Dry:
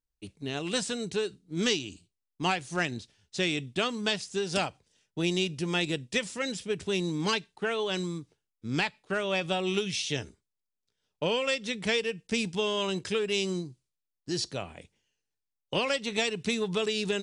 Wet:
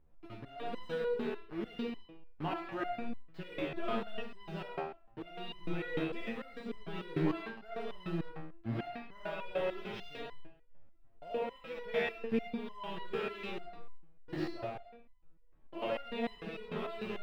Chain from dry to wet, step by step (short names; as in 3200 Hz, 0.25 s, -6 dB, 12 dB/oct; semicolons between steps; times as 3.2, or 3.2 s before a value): 5.29–7.51 G.711 law mismatch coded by mu; bell 610 Hz +5.5 dB 2.3 oct; compressor 2:1, threshold -31 dBFS, peak gain reduction 7 dB; bit-crush 6-bit; tremolo saw up 0.97 Hz, depth 40%; added noise brown -65 dBFS; air absorption 460 m; reverb RT60 0.60 s, pre-delay 25 ms, DRR -2.5 dB; stepped resonator 6.7 Hz 79–1000 Hz; gain +6.5 dB